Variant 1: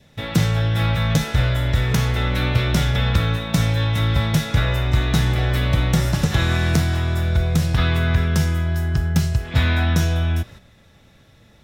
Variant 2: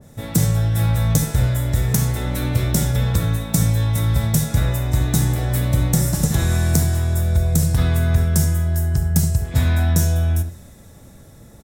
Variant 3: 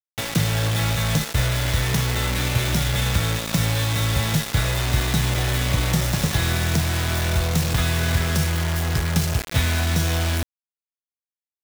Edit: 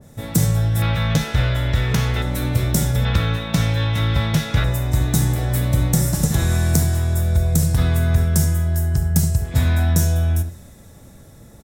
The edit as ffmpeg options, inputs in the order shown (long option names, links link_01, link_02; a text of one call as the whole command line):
ffmpeg -i take0.wav -i take1.wav -filter_complex "[0:a]asplit=2[link_01][link_02];[1:a]asplit=3[link_03][link_04][link_05];[link_03]atrim=end=0.822[link_06];[link_01]atrim=start=0.818:end=2.222[link_07];[link_04]atrim=start=2.218:end=3.052[link_08];[link_02]atrim=start=3.048:end=4.642[link_09];[link_05]atrim=start=4.638[link_10];[link_06][link_07]acrossfade=duration=0.004:curve1=hsin:curve2=hsin[link_11];[link_11][link_08]acrossfade=duration=0.004:curve1=hsin:curve2=hsin[link_12];[link_12][link_09]acrossfade=duration=0.004:curve1=hsin:curve2=hsin[link_13];[link_13][link_10]acrossfade=duration=0.004:curve1=hsin:curve2=hsin" out.wav